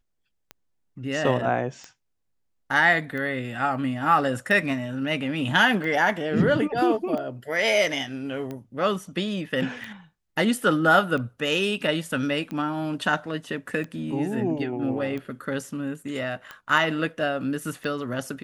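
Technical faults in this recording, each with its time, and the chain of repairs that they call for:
tick 45 rpm -22 dBFS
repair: de-click

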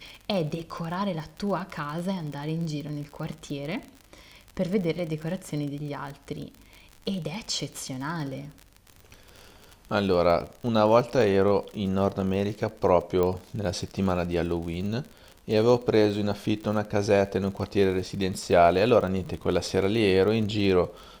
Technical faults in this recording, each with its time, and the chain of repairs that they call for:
crackle 44 per s -33 dBFS
13.23 s: pop -15 dBFS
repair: de-click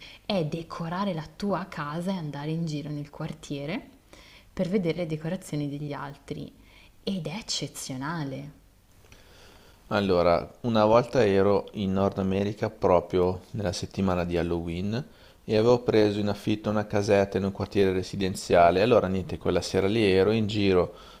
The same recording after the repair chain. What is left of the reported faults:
13.23 s: pop

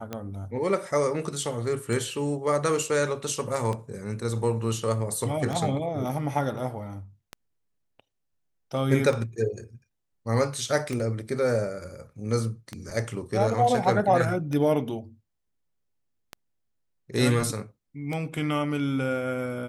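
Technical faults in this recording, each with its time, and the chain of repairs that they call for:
tick 33 1/3 rpm -18 dBFS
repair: de-click

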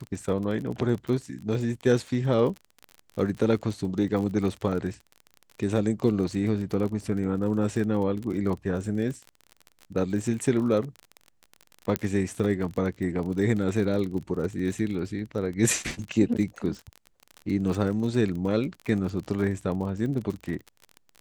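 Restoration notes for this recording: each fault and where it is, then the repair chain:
crackle 32 per s -32 dBFS
11.96 s: pop -8 dBFS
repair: de-click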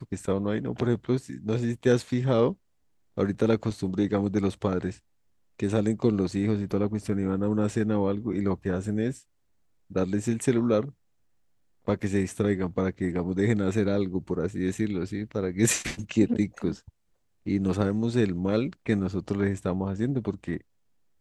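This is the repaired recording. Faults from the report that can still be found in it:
nothing left

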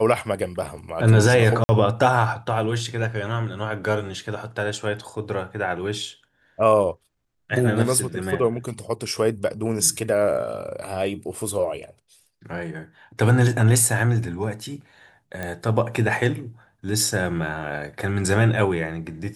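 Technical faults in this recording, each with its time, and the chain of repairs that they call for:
1.64–1.69 s: dropout 50 ms
15.43 s: pop -16 dBFS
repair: de-click; interpolate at 1.64 s, 50 ms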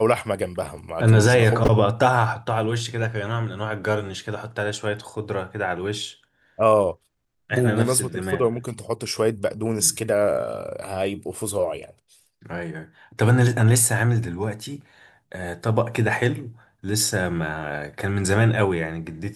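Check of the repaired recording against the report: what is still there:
nothing left

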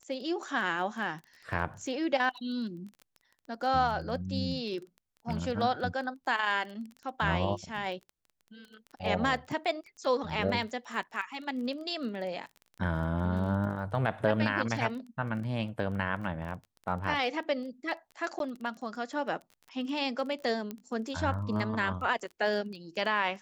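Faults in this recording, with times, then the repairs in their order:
crackle 20 per s -39 dBFS
18.39–18.40 s: dropout 12 ms
20.71 s: pop -23 dBFS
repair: de-click; interpolate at 18.39 s, 12 ms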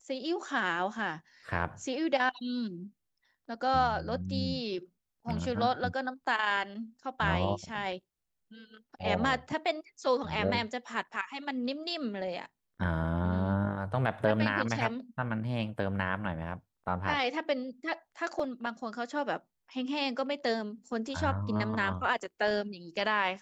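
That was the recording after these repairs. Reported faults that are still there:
nothing left

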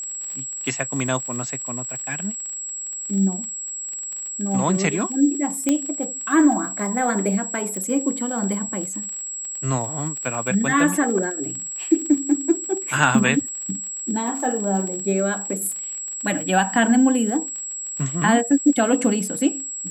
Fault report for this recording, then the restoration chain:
crackle 38 per s -29 dBFS
whine 7.7 kHz -28 dBFS
5.69 s: pop -6 dBFS
7.77 s: pop -17 dBFS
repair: de-click; band-stop 7.7 kHz, Q 30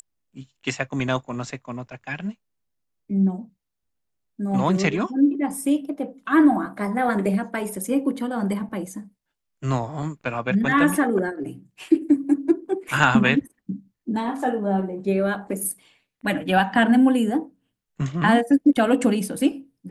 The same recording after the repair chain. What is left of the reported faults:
5.69 s: pop

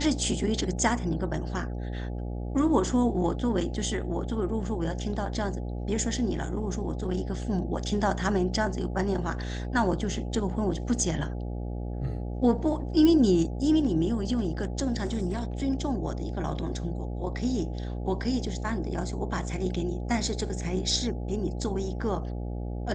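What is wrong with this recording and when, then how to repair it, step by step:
buzz 60 Hz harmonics 14 -33 dBFS
13.05 s: pop -13 dBFS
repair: de-click; de-hum 60 Hz, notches 14

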